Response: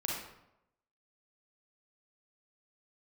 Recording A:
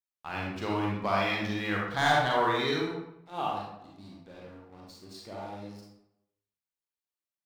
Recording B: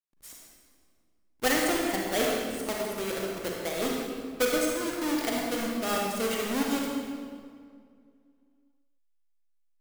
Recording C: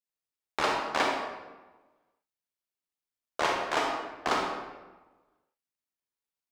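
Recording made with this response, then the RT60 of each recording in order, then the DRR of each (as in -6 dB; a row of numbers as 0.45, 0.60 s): A; 0.85, 2.1, 1.2 s; -3.5, -2.0, -1.0 dB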